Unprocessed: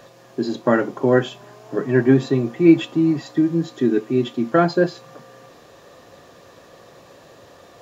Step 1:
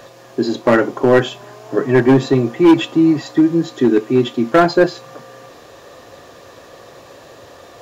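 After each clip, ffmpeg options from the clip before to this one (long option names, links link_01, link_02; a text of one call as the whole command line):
ffmpeg -i in.wav -af "asoftclip=type=hard:threshold=-10.5dB,equalizer=frequency=180:width_type=o:width=0.64:gain=-6.5,volume=6.5dB" out.wav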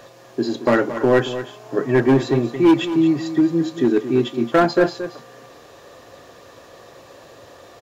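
ffmpeg -i in.wav -af "aecho=1:1:225:0.251,volume=-4dB" out.wav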